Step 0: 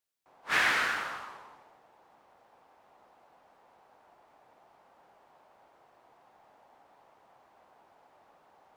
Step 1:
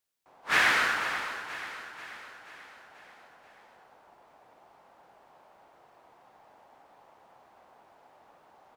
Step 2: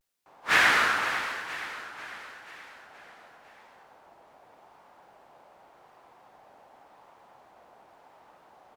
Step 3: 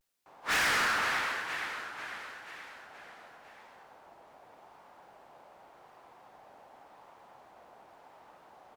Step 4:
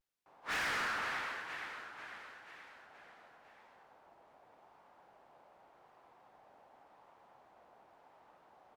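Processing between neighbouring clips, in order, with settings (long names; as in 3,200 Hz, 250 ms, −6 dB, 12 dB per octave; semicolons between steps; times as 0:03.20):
repeating echo 485 ms, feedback 54%, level −11.5 dB; level +3 dB
pitch vibrato 0.88 Hz 89 cents; level +2.5 dB
hard clipping −26 dBFS, distortion −6 dB
high-shelf EQ 5,200 Hz −7 dB; level −7 dB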